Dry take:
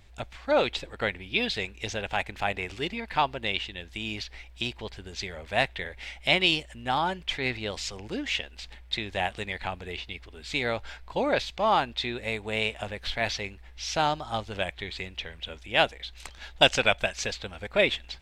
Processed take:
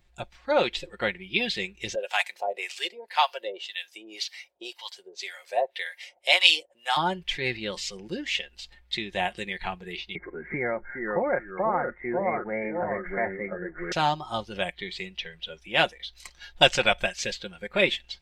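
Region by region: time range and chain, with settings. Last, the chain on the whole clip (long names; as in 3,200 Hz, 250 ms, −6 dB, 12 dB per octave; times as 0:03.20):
0:01.95–0:06.97: high-shelf EQ 3,000 Hz +11.5 dB + two-band tremolo in antiphase 1.9 Hz, depth 100%, crossover 750 Hz + high-pass with resonance 540 Hz, resonance Q 2.2
0:10.15–0:13.92: Chebyshev low-pass with heavy ripple 2,200 Hz, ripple 3 dB + delay with pitch and tempo change per echo 366 ms, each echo −2 semitones, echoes 2, each echo −6 dB + multiband upward and downward compressor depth 70%
whole clip: comb filter 5.6 ms, depth 51%; noise reduction from a noise print of the clip's start 10 dB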